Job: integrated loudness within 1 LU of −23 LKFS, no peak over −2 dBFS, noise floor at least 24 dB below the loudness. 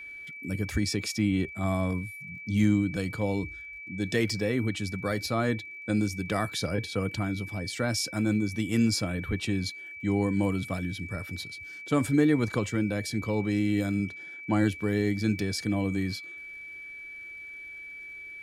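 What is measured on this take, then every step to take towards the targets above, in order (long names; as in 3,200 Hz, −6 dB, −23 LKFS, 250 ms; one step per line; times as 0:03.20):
crackle rate 56 per second; interfering tone 2,300 Hz; level of the tone −40 dBFS; integrated loudness −29.0 LKFS; sample peak −13.0 dBFS; target loudness −23.0 LKFS
→ click removal
notch filter 2,300 Hz, Q 30
level +6 dB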